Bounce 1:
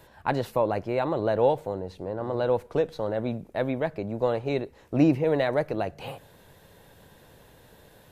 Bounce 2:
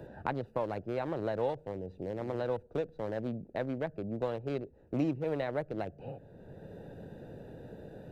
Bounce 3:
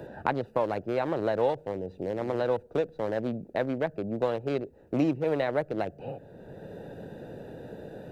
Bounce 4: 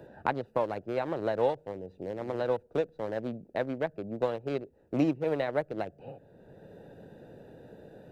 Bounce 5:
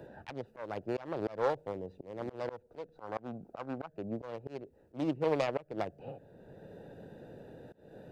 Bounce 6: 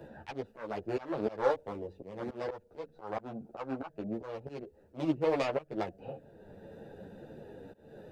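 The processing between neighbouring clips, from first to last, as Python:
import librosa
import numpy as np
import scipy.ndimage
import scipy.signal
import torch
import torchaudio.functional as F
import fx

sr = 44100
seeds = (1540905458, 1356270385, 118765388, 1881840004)

y1 = fx.wiener(x, sr, points=41)
y1 = fx.band_squash(y1, sr, depth_pct=70)
y1 = y1 * 10.0 ** (-7.5 / 20.0)
y2 = fx.low_shelf(y1, sr, hz=140.0, db=-8.5)
y2 = y2 * 10.0 ** (7.0 / 20.0)
y3 = fx.upward_expand(y2, sr, threshold_db=-37.0, expansion=1.5)
y4 = fx.self_delay(y3, sr, depth_ms=0.34)
y4 = fx.spec_box(y4, sr, start_s=2.96, length_s=0.92, low_hz=670.0, high_hz=1600.0, gain_db=9)
y4 = fx.auto_swell(y4, sr, attack_ms=257.0)
y5 = fx.ensemble(y4, sr)
y5 = y5 * 10.0 ** (4.5 / 20.0)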